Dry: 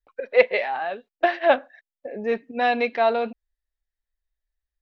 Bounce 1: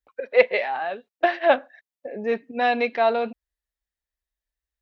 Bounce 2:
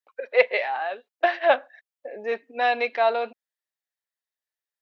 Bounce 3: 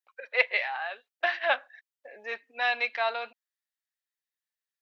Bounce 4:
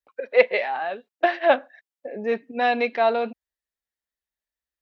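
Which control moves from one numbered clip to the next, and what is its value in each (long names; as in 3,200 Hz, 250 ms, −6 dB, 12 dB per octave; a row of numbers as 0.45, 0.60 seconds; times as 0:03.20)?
high-pass filter, corner frequency: 47, 470, 1,200, 120 Hertz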